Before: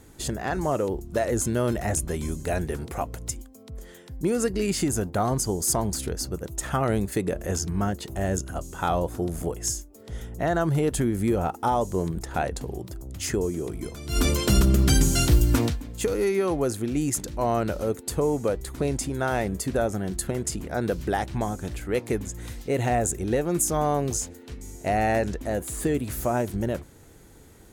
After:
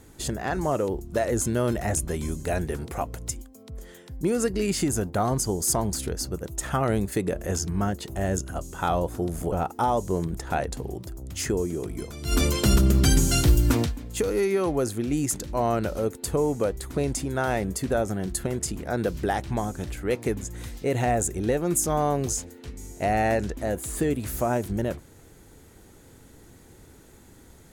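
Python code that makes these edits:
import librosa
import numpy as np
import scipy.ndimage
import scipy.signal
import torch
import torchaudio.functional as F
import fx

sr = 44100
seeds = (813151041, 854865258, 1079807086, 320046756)

y = fx.edit(x, sr, fx.cut(start_s=9.52, length_s=1.84), tone=tone)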